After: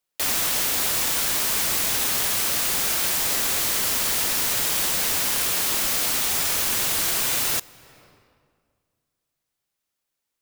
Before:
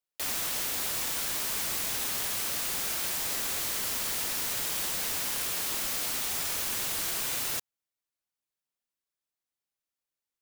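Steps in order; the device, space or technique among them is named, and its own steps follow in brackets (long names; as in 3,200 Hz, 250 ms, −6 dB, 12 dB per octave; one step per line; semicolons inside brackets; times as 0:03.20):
compressed reverb return (on a send at −10 dB: convolution reverb RT60 2.0 s, pre-delay 19 ms + downward compressor 4 to 1, threshold −44 dBFS, peak gain reduction 11.5 dB)
on the sum: level +8.5 dB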